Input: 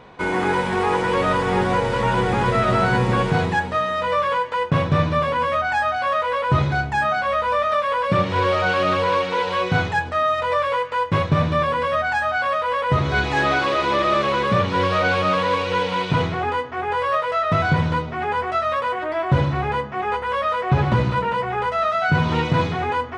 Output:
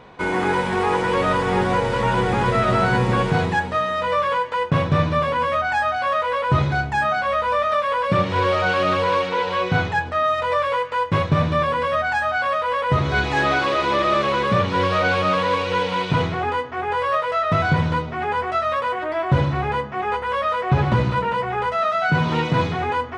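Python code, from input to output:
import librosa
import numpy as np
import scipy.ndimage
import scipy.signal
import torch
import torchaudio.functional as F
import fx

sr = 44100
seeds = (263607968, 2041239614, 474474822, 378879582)

y = fx.high_shelf(x, sr, hz=7800.0, db=-7.5, at=(9.29, 10.24))
y = fx.highpass(y, sr, hz=110.0, slope=24, at=(21.74, 22.57))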